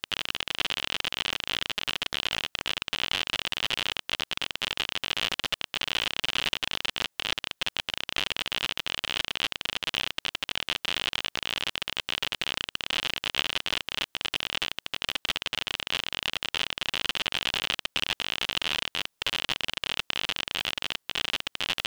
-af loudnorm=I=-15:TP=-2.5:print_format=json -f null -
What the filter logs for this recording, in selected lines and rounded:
"input_i" : "-29.1",
"input_tp" : "-2.1",
"input_lra" : "1.1",
"input_thresh" : "-39.1",